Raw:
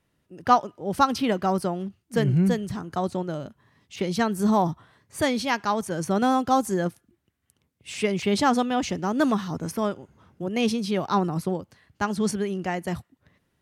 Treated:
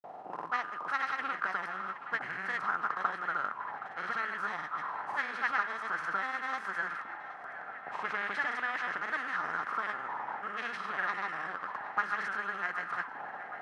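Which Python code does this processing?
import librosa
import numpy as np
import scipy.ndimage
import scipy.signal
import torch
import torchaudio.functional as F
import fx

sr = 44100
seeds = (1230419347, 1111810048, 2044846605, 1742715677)

y = fx.bin_compress(x, sr, power=0.4)
y = fx.auto_wah(y, sr, base_hz=660.0, top_hz=1900.0, q=6.0, full_db=-12.5, direction='up')
y = fx.granulator(y, sr, seeds[0], grain_ms=100.0, per_s=20.0, spray_ms=100.0, spread_st=0)
y = fx.echo_banded(y, sr, ms=769, feedback_pct=83, hz=1700.0, wet_db=-13)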